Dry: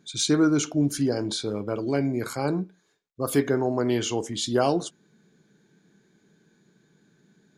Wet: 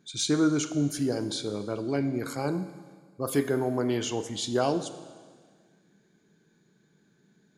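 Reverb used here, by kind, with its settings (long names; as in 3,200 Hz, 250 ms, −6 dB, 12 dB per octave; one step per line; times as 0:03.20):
four-comb reverb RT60 1.7 s, combs from 32 ms, DRR 11.5 dB
level −3.5 dB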